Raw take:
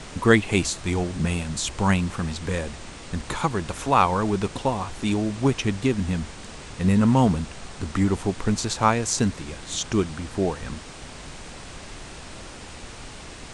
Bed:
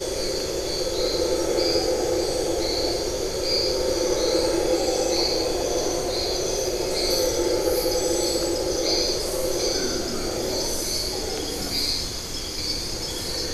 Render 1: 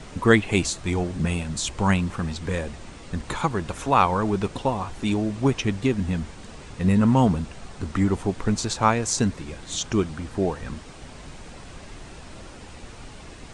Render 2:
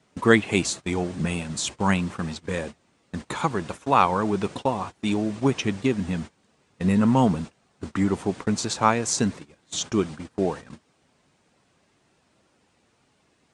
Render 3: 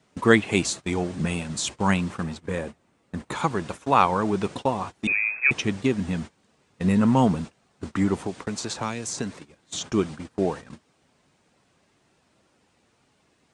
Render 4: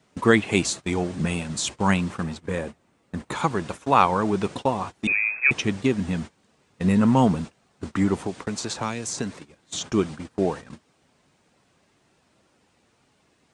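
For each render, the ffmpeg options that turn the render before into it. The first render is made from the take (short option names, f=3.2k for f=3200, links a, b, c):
-af "afftdn=nr=6:nf=-41"
-af "highpass=130,agate=range=-21dB:threshold=-33dB:ratio=16:detection=peak"
-filter_complex "[0:a]asettb=1/sr,asplit=3[a][b][c];[a]atrim=end=2.234[d];[b]atrim=start=2.23:end=3.32,asetpts=PTS-STARTPTS,afade=t=in:d=0.004:c=qsin,afade=t=out:st=1.086:d=0.004:c=qsin,equalizer=f=5k:t=o:w=2:g=-6.5[e];[c]atrim=start=3.316[f];[d][e]acrossfade=d=0.004:c1=hsin:c2=qsin[g];[g][f]acrossfade=d=0.004:c1=qsin:c2=hsin,asettb=1/sr,asplit=3[h][i][j];[h]atrim=end=5.074[k];[i]atrim=start=5.07:end=5.51,asetpts=PTS-STARTPTS,afade=t=in:d=0.004:c=qsin,afade=t=out:st=0.436:d=0.004:c=qsin,lowpass=f=2.3k:t=q:w=0.5098,lowpass=f=2.3k:t=q:w=0.6013,lowpass=f=2.3k:t=q:w=0.9,lowpass=f=2.3k:t=q:w=2.563,afreqshift=-2700[l];[j]atrim=start=5.506[m];[k][l]acrossfade=d=0.004:c1=hsin:c2=qsin[n];[n][m]acrossfade=d=0.004:c1=qsin:c2=hsin,asettb=1/sr,asplit=3[o][p][q];[o]atrim=end=8.194[r];[p]atrim=start=8.19:end=9.93,asetpts=PTS-STARTPTS,afade=t=in:d=0.004:c=qsin,afade=t=out:st=1.736:d=0.004:c=qsin,acrossover=split=350|2700[s][t][u];[s]acompressor=threshold=-32dB:ratio=4[v];[t]acompressor=threshold=-31dB:ratio=4[w];[u]acompressor=threshold=-31dB:ratio=4[x];[v][w][x]amix=inputs=3:normalize=0[y];[q]atrim=start=9.926[z];[r][y]acrossfade=d=0.004:c1=hsin:c2=qsin[aa];[aa][z]acrossfade=d=0.004:c1=qsin:c2=hsin"
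-af "volume=1dB,alimiter=limit=-3dB:level=0:latency=1"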